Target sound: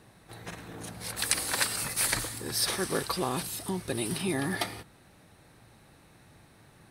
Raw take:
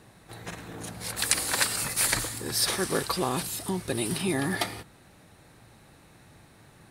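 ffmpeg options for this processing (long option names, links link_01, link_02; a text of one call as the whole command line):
ffmpeg -i in.wav -af "bandreject=frequency=7100:width=12,volume=-2.5dB" out.wav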